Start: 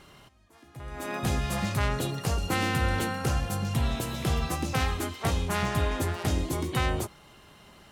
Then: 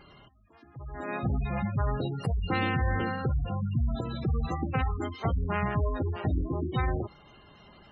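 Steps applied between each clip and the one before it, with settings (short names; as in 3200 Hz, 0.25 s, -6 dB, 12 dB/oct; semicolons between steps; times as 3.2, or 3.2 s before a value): spectral gate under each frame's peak -15 dB strong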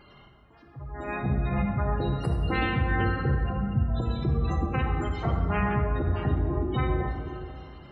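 plate-style reverb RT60 2.6 s, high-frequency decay 0.45×, DRR 1.5 dB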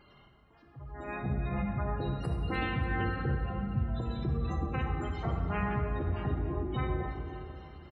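feedback echo 0.292 s, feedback 59%, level -15 dB; gain -6 dB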